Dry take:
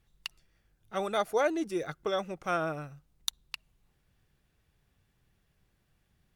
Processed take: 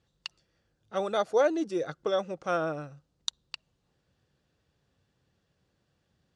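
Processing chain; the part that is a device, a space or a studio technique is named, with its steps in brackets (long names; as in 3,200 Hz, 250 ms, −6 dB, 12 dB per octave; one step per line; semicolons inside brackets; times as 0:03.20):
car door speaker (loudspeaker in its box 80–7,700 Hz, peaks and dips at 290 Hz +3 dB, 520 Hz +7 dB, 2,200 Hz −6 dB, 4,500 Hz +3 dB)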